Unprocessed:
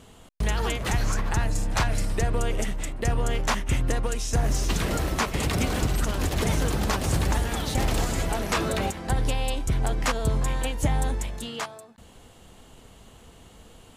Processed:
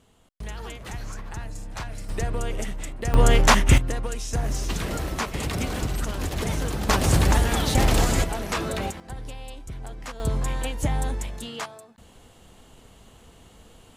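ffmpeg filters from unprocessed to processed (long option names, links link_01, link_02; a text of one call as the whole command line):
ffmpeg -i in.wav -af "asetnsamples=nb_out_samples=441:pad=0,asendcmd='2.09 volume volume -2.5dB;3.14 volume volume 9dB;3.78 volume volume -2.5dB;6.89 volume volume 5dB;8.24 volume volume -2dB;9 volume volume -12dB;10.2 volume volume -1dB',volume=-10dB" out.wav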